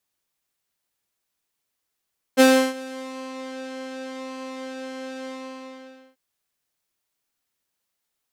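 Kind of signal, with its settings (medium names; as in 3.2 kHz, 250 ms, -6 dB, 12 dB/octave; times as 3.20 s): synth patch with pulse-width modulation C5, sub -0.5 dB, noise -16 dB, filter lowpass, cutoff 4 kHz, Q 0.72, filter envelope 2 oct, filter decay 0.96 s, attack 32 ms, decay 0.33 s, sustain -22.5 dB, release 0.87 s, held 2.92 s, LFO 0.87 Hz, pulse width 43%, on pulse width 14%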